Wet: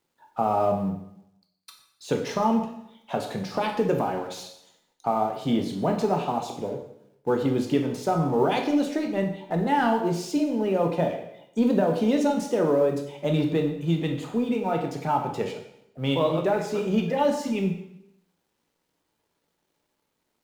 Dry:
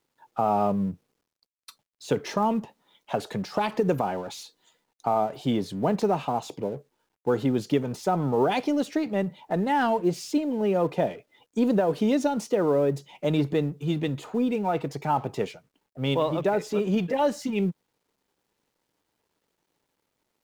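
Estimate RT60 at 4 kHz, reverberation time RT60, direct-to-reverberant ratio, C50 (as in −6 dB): 0.75 s, 0.80 s, 3.0 dB, 7.0 dB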